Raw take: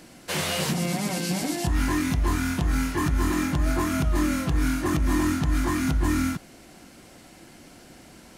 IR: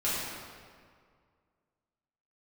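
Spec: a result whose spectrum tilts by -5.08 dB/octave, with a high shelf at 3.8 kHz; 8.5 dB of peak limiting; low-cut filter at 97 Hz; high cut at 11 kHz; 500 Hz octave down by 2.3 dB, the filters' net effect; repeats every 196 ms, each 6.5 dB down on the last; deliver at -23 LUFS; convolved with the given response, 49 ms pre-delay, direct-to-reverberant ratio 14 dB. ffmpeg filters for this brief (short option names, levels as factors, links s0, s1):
-filter_complex "[0:a]highpass=97,lowpass=11000,equalizer=f=500:t=o:g=-3.5,highshelf=f=3800:g=-5.5,alimiter=limit=0.075:level=0:latency=1,aecho=1:1:196|392|588|784|980|1176:0.473|0.222|0.105|0.0491|0.0231|0.0109,asplit=2[s0][s1];[1:a]atrim=start_sample=2205,adelay=49[s2];[s1][s2]afir=irnorm=-1:irlink=0,volume=0.0668[s3];[s0][s3]amix=inputs=2:normalize=0,volume=2.24"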